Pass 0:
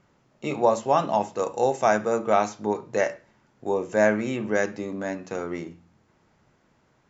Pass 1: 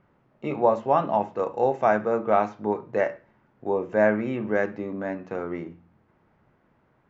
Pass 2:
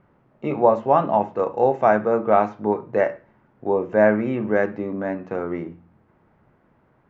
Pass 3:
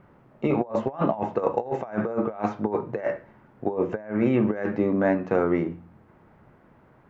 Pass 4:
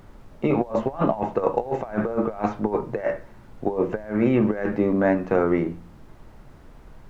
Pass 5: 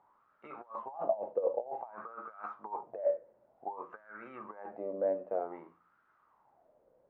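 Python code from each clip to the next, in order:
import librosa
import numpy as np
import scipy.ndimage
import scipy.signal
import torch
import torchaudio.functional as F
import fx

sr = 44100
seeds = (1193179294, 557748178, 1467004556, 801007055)

y1 = scipy.signal.sosfilt(scipy.signal.butter(2, 2100.0, 'lowpass', fs=sr, output='sos'), x)
y2 = fx.high_shelf(y1, sr, hz=3200.0, db=-9.0)
y2 = y2 * 10.0 ** (4.5 / 20.0)
y3 = fx.over_compress(y2, sr, threshold_db=-24.0, ratio=-0.5)
y4 = fx.dmg_noise_colour(y3, sr, seeds[0], colour='brown', level_db=-47.0)
y4 = y4 * 10.0 ** (2.0 / 20.0)
y5 = fx.wah_lfo(y4, sr, hz=0.54, low_hz=530.0, high_hz=1400.0, q=7.3)
y5 = y5 * 10.0 ** (-3.0 / 20.0)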